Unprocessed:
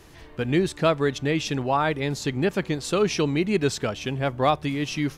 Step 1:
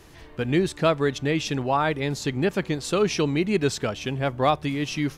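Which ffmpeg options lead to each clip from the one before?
-af anull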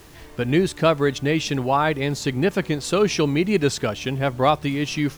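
-af "acrusher=bits=8:mix=0:aa=0.000001,volume=3dB"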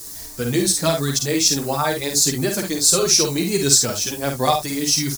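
-filter_complex "[0:a]aexciter=amount=8.9:drive=6:freq=4.3k,asplit=2[a][b];[b]aecho=0:1:50|71:0.562|0.237[c];[a][c]amix=inputs=2:normalize=0,asplit=2[d][e];[e]adelay=6.5,afreqshift=-1.5[f];[d][f]amix=inputs=2:normalize=1"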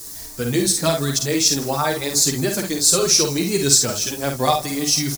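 -af "aecho=1:1:160|320|480|640|800:0.0841|0.0496|0.0293|0.0173|0.0102"

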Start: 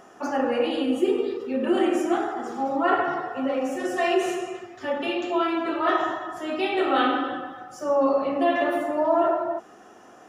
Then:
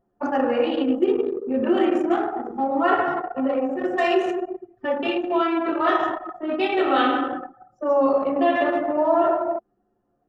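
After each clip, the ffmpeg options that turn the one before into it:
-filter_complex "[0:a]anlmdn=100,asplit=2[a][b];[b]acompressor=threshold=-29dB:ratio=6,volume=-0.5dB[c];[a][c]amix=inputs=2:normalize=0"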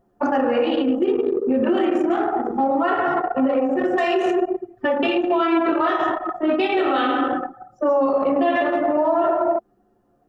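-af "alimiter=limit=-19.5dB:level=0:latency=1:release=139,volume=8dB"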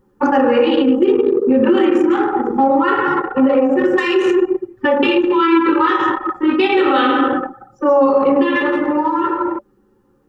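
-af "asuperstop=centerf=670:order=12:qfactor=3.5,volume=6.5dB"

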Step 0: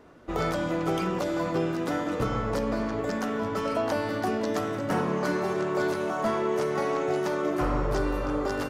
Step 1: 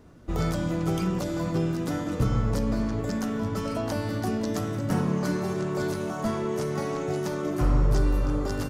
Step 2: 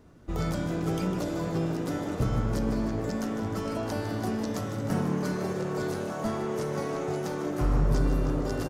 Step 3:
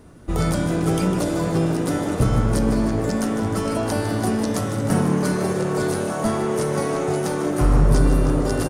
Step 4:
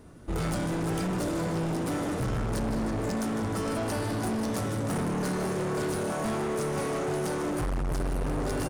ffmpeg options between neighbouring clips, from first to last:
-af "bass=f=250:g=14,treble=f=4k:g=9,volume=-5dB"
-filter_complex "[0:a]asplit=9[a][b][c][d][e][f][g][h][i];[b]adelay=153,afreqshift=110,volume=-10.5dB[j];[c]adelay=306,afreqshift=220,volume=-14.4dB[k];[d]adelay=459,afreqshift=330,volume=-18.3dB[l];[e]adelay=612,afreqshift=440,volume=-22.1dB[m];[f]adelay=765,afreqshift=550,volume=-26dB[n];[g]adelay=918,afreqshift=660,volume=-29.9dB[o];[h]adelay=1071,afreqshift=770,volume=-33.8dB[p];[i]adelay=1224,afreqshift=880,volume=-37.6dB[q];[a][j][k][l][m][n][o][p][q]amix=inputs=9:normalize=0,volume=-3dB"
-af "equalizer=f=9.3k:w=4.3:g=14,volume=8.5dB"
-af "volume=23dB,asoftclip=hard,volume=-23dB,volume=-4dB"

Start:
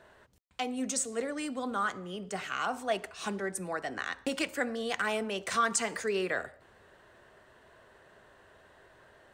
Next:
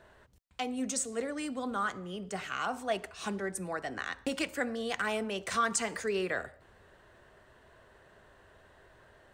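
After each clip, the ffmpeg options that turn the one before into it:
-af "lowshelf=f=99:g=9.5,volume=-1.5dB"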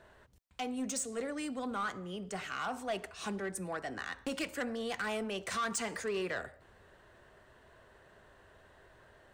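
-af "asoftclip=type=tanh:threshold=-28dB,volume=-1dB"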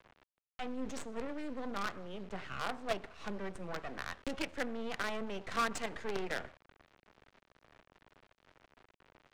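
-filter_complex "[0:a]acrusher=bits=6:dc=4:mix=0:aa=0.000001,acrossover=split=380[a][b];[b]adynamicsmooth=sensitivity=3.5:basefreq=3.2k[c];[a][c]amix=inputs=2:normalize=0,volume=1.5dB"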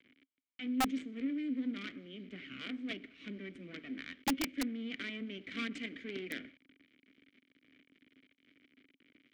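-filter_complex "[0:a]asplit=3[a][b][c];[a]bandpass=f=270:t=q:w=8,volume=0dB[d];[b]bandpass=f=2.29k:t=q:w=8,volume=-6dB[e];[c]bandpass=f=3.01k:t=q:w=8,volume=-9dB[f];[d][e][f]amix=inputs=3:normalize=0,aeval=exprs='(mod(75*val(0)+1,2)-1)/75':c=same,volume=12dB"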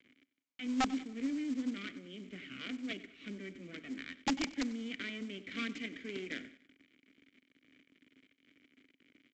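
-af "aresample=16000,acrusher=bits=5:mode=log:mix=0:aa=0.000001,aresample=44100,aecho=1:1:95|190|285:0.112|0.0482|0.0207"

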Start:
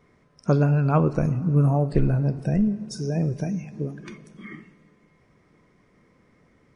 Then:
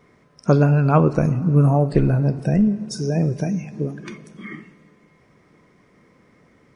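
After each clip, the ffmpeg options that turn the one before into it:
-af "lowshelf=f=66:g=-9.5,volume=5.5dB"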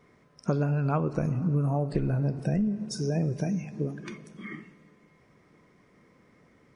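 -af "acompressor=threshold=-18dB:ratio=6,volume=-5dB"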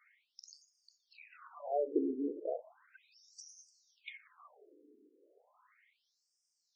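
-af "afftfilt=real='re*between(b*sr/1024,330*pow(6800/330,0.5+0.5*sin(2*PI*0.35*pts/sr))/1.41,330*pow(6800/330,0.5+0.5*sin(2*PI*0.35*pts/sr))*1.41)':imag='im*between(b*sr/1024,330*pow(6800/330,0.5+0.5*sin(2*PI*0.35*pts/sr))/1.41,330*pow(6800/330,0.5+0.5*sin(2*PI*0.35*pts/sr))*1.41)':win_size=1024:overlap=0.75"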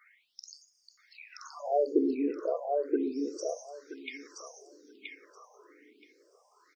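-af "aecho=1:1:975|1950|2925:0.708|0.106|0.0159,volume=6.5dB"

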